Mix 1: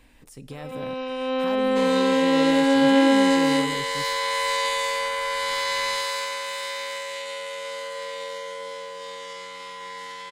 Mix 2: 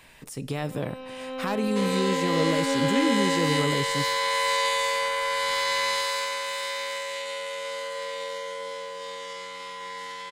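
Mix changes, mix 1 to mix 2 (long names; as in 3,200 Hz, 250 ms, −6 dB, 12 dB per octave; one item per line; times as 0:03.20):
speech +8.0 dB
first sound −9.5 dB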